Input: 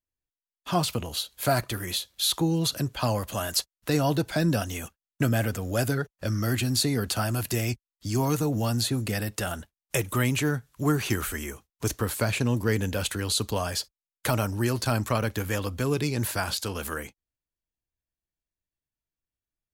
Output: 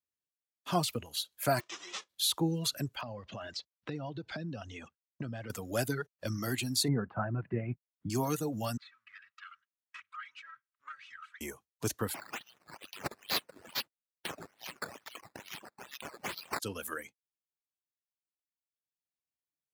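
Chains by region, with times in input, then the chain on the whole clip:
0:01.59–0:02.08: spectral envelope flattened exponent 0.1 + loudspeaker in its box 210–6,000 Hz, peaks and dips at 340 Hz +9 dB, 1,100 Hz +5 dB, 4,500 Hz −5 dB
0:03.01–0:05.50: low-pass filter 4,900 Hz 24 dB per octave + low-shelf EQ 360 Hz +5.5 dB + downward compressor 4 to 1, threshold −31 dBFS
0:06.88–0:08.10: inverse Chebyshev low-pass filter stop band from 9,000 Hz, stop band 80 dB + parametric band 160 Hz +9.5 dB 0.69 octaves
0:08.77–0:11.41: lower of the sound and its delayed copy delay 3.1 ms + elliptic high-pass filter 1,200 Hz + head-to-tape spacing loss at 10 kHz 40 dB
0:12.14–0:16.60: Butterworth high-pass 2,700 Hz 48 dB per octave + sample-and-hold swept by an LFO 10× 2.3 Hz
whole clip: reverb reduction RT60 1.9 s; high-pass filter 120 Hz; level −4.5 dB

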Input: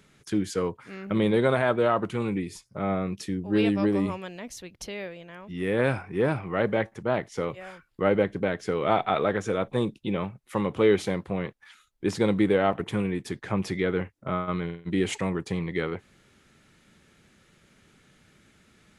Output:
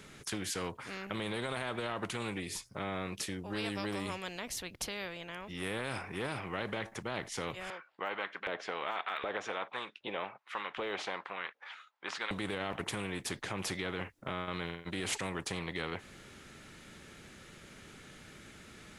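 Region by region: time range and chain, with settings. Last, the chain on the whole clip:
0:07.70–0:12.31: low-pass filter 2,800 Hz + de-essing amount 95% + auto-filter high-pass saw up 1.3 Hz 470–1,700 Hz
whole clip: brickwall limiter −18 dBFS; every bin compressed towards the loudest bin 2 to 1; level −2.5 dB

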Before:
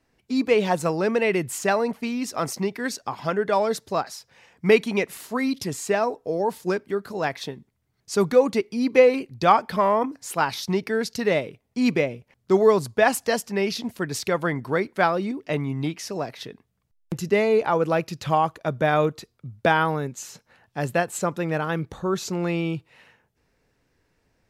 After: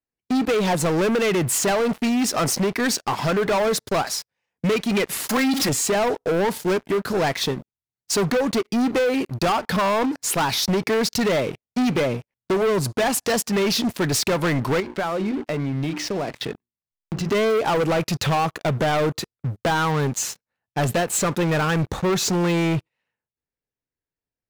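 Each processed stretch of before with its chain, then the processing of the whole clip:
0:05.29–0:05.69: converter with a step at zero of −32 dBFS + low-shelf EQ 190 Hz −10 dB + comb filter 3.7 ms, depth 72%
0:14.80–0:17.29: low-pass filter 4,100 Hz + mains-hum notches 60/120/180/240/300/360 Hz + downward compressor, threshold −33 dBFS
whole clip: noise gate −41 dBFS, range −11 dB; downward compressor 6 to 1, threshold −22 dBFS; leveller curve on the samples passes 5; level −5.5 dB

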